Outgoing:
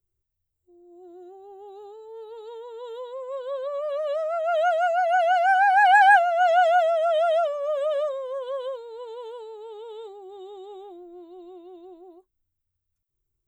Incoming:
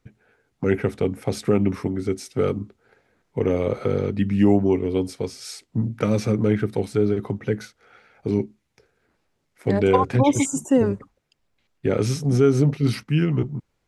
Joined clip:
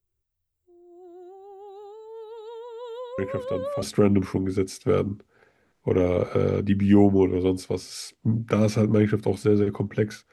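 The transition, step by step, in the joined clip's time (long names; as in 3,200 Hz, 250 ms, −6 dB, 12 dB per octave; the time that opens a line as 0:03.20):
outgoing
0:03.18: mix in incoming from 0:00.68 0.64 s −8.5 dB
0:03.82: continue with incoming from 0:01.32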